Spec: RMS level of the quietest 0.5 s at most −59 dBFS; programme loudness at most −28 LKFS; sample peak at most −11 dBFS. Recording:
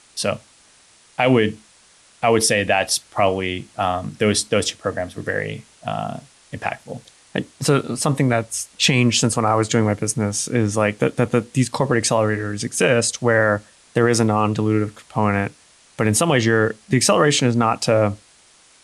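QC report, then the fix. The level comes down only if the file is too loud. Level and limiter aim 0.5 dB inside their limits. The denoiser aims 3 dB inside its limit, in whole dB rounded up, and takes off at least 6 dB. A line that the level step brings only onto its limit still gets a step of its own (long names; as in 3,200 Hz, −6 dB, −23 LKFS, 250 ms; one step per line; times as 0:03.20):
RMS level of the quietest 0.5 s −52 dBFS: out of spec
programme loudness −19.5 LKFS: out of spec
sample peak −5.0 dBFS: out of spec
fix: level −9 dB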